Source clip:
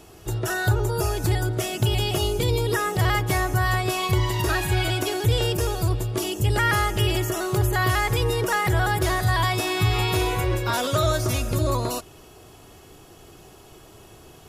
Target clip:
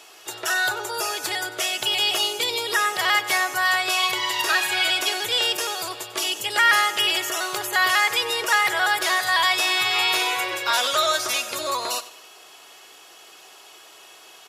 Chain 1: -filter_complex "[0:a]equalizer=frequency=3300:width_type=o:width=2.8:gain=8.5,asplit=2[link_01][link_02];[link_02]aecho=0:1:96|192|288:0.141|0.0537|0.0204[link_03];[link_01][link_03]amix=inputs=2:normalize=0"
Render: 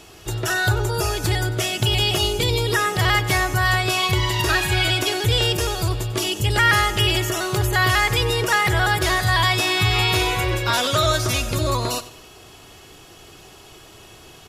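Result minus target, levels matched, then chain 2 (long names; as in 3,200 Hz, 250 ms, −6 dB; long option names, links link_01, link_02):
500 Hz band +5.0 dB
-filter_complex "[0:a]highpass=630,equalizer=frequency=3300:width_type=o:width=2.8:gain=8.5,asplit=2[link_01][link_02];[link_02]aecho=0:1:96|192|288:0.141|0.0537|0.0204[link_03];[link_01][link_03]amix=inputs=2:normalize=0"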